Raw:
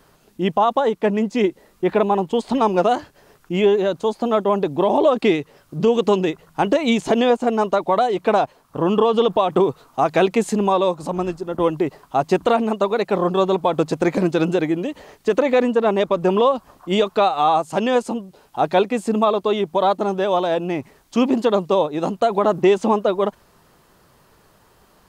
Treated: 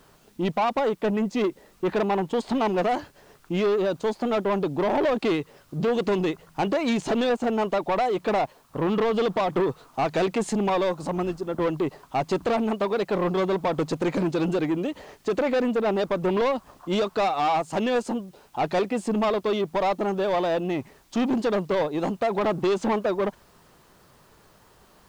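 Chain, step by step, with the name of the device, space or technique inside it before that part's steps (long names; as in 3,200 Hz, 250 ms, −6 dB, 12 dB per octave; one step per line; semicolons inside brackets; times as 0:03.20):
compact cassette (soft clipping −17.5 dBFS, distortion −10 dB; low-pass filter 8,400 Hz; tape wow and flutter 22 cents; white noise bed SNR 40 dB)
level −1.5 dB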